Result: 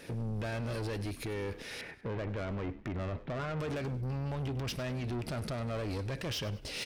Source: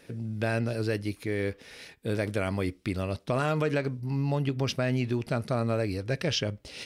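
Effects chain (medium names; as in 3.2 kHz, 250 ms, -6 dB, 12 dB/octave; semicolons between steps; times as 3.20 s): 1.81–3.60 s: low-pass 2.2 kHz 24 dB/octave; peak limiter -27 dBFS, peak gain reduction 10 dB; saturation -38.5 dBFS, distortion -9 dB; frequency-shifting echo 99 ms, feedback 38%, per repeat -70 Hz, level -16 dB; trim +5.5 dB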